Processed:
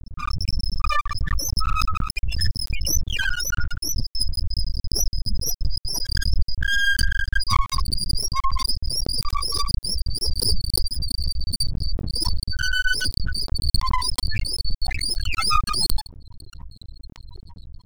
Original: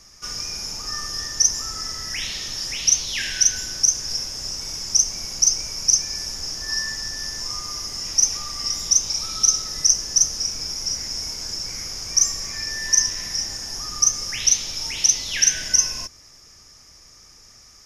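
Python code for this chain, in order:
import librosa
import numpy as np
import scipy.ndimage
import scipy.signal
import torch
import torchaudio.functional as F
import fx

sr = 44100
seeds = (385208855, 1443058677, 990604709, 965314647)

y = fx.pitch_glide(x, sr, semitones=-4.0, runs='starting unshifted')
y = fx.fold_sine(y, sr, drive_db=16, ceiling_db=-2.0)
y = fx.lowpass(y, sr, hz=1300.0, slope=6)
y = fx.spec_topn(y, sr, count=4)
y = np.maximum(y, 0.0)
y = fx.pre_swell(y, sr, db_per_s=53.0)
y = y * 10.0 ** (3.0 / 20.0)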